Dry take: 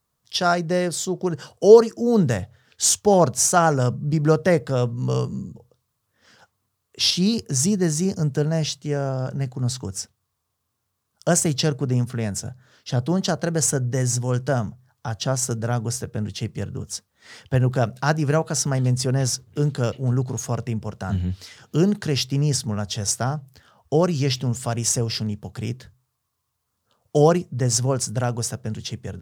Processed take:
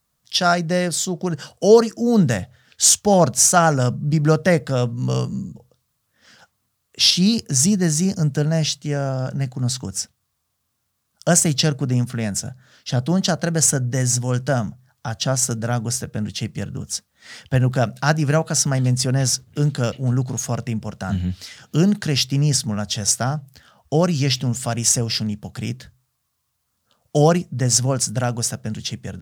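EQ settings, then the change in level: fifteen-band graphic EQ 100 Hz -6 dB, 400 Hz -8 dB, 1 kHz -5 dB; +5.0 dB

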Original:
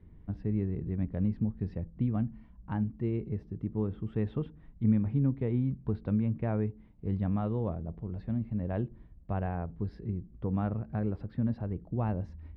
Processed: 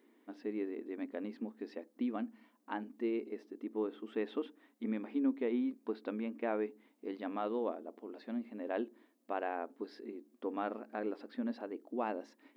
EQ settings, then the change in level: brick-wall FIR high-pass 230 Hz; treble shelf 2.5 kHz +11 dB; 0.0 dB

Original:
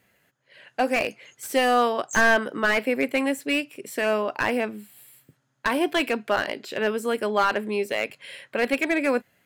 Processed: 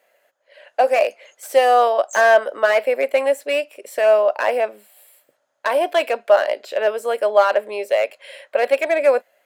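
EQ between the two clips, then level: resonant high-pass 590 Hz, resonance Q 4.9; 0.0 dB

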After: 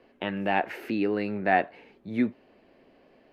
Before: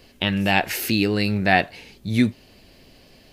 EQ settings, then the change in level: three-band isolator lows -19 dB, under 230 Hz, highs -16 dB, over 2.6 kHz; treble shelf 2.7 kHz -12 dB; -2.0 dB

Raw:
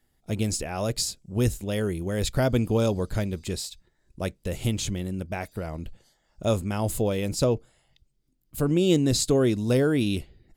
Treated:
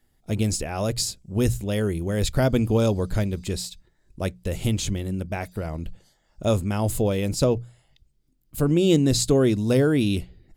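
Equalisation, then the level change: bass shelf 200 Hz +3.5 dB; hum notches 60/120/180 Hz; +1.5 dB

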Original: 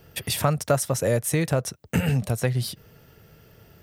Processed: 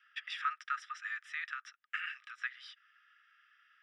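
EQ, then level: Savitzky-Golay filter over 25 samples; rippled Chebyshev high-pass 1.2 kHz, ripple 6 dB; distance through air 130 m; +1.0 dB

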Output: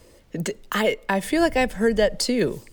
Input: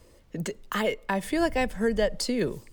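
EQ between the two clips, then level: bass shelf 140 Hz -5 dB; peaking EQ 1.1 kHz -3 dB 0.51 oct; +6.0 dB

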